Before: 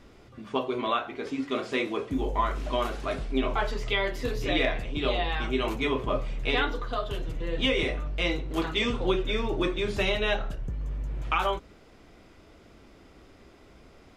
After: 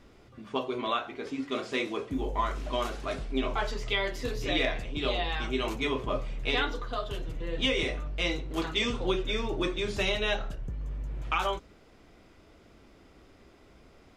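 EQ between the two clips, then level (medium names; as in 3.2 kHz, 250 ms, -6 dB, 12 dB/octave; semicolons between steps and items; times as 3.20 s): dynamic bell 6.2 kHz, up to +7 dB, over -48 dBFS, Q 0.89; -3.0 dB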